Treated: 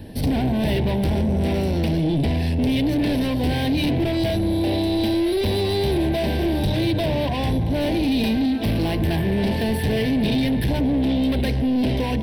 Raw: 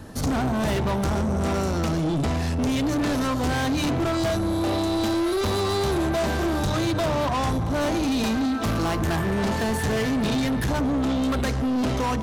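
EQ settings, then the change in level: static phaser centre 3 kHz, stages 4; +4.0 dB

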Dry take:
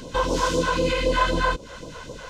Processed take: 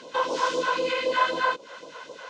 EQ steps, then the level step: high-pass 490 Hz 12 dB/octave; distance through air 100 m; 0.0 dB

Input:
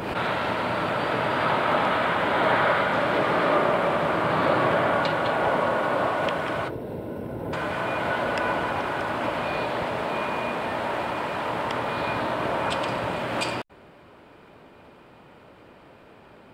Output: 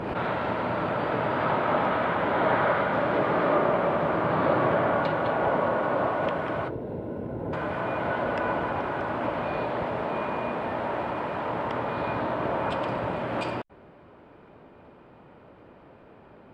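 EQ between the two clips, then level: low-pass 1.2 kHz 6 dB/octave; 0.0 dB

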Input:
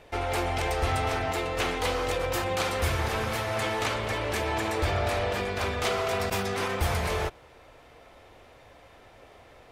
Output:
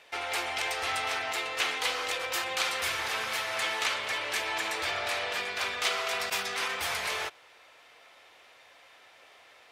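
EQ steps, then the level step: high-pass 540 Hz 6 dB/octave; tilt shelf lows -8.5 dB, about 1.3 kHz; treble shelf 5.5 kHz -9.5 dB; 0.0 dB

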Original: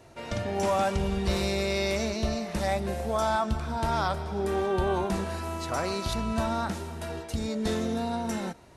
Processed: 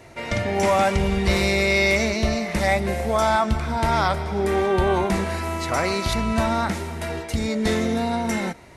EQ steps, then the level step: peaking EQ 2.1 kHz +10 dB 0.31 oct; +6.5 dB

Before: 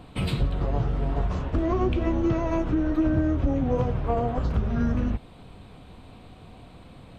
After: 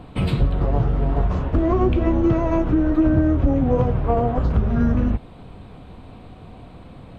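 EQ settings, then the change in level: treble shelf 2.6 kHz -9 dB; +6.0 dB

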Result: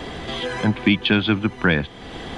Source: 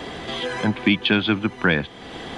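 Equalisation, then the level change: bass shelf 94 Hz +10.5 dB; 0.0 dB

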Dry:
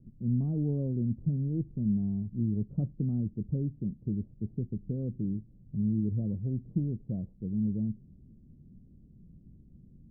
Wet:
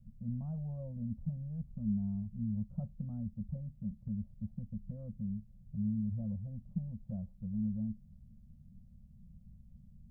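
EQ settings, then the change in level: elliptic band-stop 230–530 Hz, stop band 40 dB; dynamic bell 130 Hz, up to -7 dB, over -46 dBFS, Q 2.7; ten-band graphic EQ 125 Hz -4 dB, 250 Hz -5 dB, 500 Hz -6 dB; +2.0 dB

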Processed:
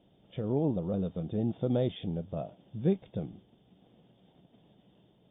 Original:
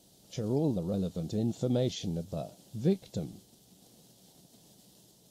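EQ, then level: dynamic bell 990 Hz, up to +3 dB, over -44 dBFS, Q 0.81; brick-wall FIR low-pass 3.7 kHz; distance through air 170 m; 0.0 dB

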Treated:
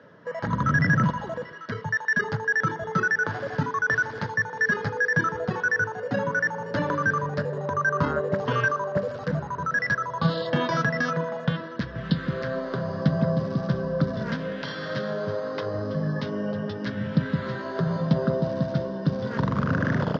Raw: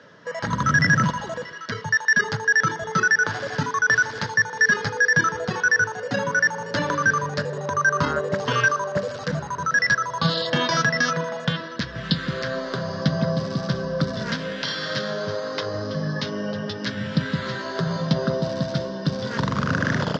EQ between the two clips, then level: low-pass 1.1 kHz 6 dB/octave; 0.0 dB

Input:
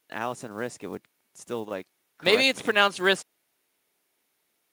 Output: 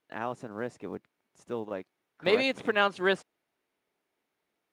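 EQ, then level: low-pass 1.6 kHz 6 dB/octave; -2.0 dB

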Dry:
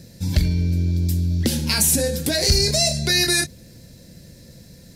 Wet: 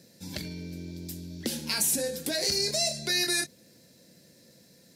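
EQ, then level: high-pass 240 Hz 12 dB/octave; -8.0 dB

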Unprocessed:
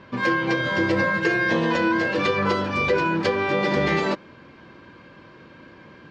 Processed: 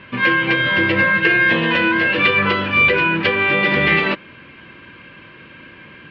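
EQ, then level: FFT filter 130 Hz 0 dB, 820 Hz -4 dB, 2.8 kHz +11 dB, 7 kHz -21 dB; +4.0 dB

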